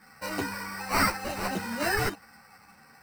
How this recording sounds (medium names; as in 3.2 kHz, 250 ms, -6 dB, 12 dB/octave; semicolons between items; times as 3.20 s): aliases and images of a low sample rate 3.4 kHz, jitter 0%; a shimmering, thickened sound